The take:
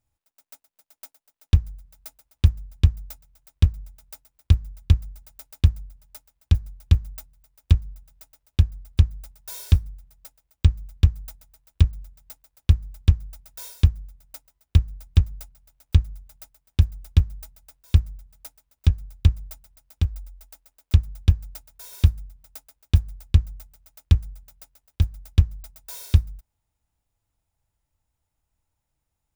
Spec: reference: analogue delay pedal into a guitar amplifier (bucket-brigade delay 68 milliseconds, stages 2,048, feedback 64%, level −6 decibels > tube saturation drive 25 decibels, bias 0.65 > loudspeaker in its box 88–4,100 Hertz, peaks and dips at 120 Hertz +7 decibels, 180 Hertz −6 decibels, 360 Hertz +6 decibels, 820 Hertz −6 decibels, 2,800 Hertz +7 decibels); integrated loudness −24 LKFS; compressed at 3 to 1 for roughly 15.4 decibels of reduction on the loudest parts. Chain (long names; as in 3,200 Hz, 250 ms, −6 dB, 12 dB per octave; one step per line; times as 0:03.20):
downward compressor 3 to 1, threshold −31 dBFS
bucket-brigade delay 68 ms, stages 2,048, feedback 64%, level −6 dB
tube saturation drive 25 dB, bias 0.65
loudspeaker in its box 88–4,100 Hz, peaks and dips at 120 Hz +7 dB, 180 Hz −6 dB, 360 Hz +6 dB, 820 Hz −6 dB, 2,800 Hz +7 dB
level +17.5 dB